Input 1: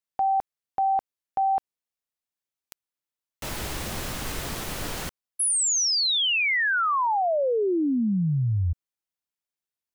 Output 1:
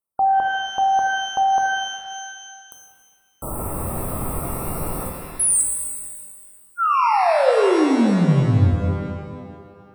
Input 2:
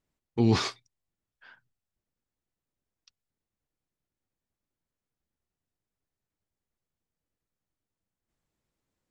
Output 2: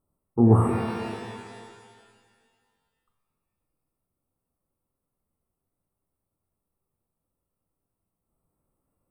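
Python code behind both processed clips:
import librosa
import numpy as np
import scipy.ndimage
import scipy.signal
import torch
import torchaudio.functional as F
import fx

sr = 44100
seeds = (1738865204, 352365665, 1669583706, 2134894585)

y = fx.brickwall_bandstop(x, sr, low_hz=1400.0, high_hz=7900.0)
y = fx.rev_shimmer(y, sr, seeds[0], rt60_s=1.9, semitones=12, shimmer_db=-8, drr_db=1.5)
y = y * 10.0 ** (4.5 / 20.0)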